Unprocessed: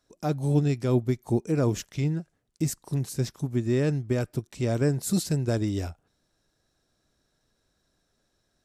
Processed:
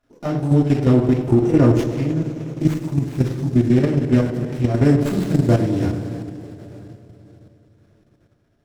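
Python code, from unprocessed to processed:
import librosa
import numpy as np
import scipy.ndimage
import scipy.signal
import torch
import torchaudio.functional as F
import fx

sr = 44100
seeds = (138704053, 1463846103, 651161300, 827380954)

p1 = fx.high_shelf(x, sr, hz=6600.0, db=-10.5)
p2 = fx.rev_double_slope(p1, sr, seeds[0], early_s=0.29, late_s=3.9, knee_db=-18, drr_db=-4.0)
p3 = fx.level_steps(p2, sr, step_db=9)
p4 = p3 + fx.echo_filtered(p3, sr, ms=101, feedback_pct=76, hz=1400.0, wet_db=-10.5, dry=0)
p5 = fx.running_max(p4, sr, window=9)
y = p5 * librosa.db_to_amplitude(6.0)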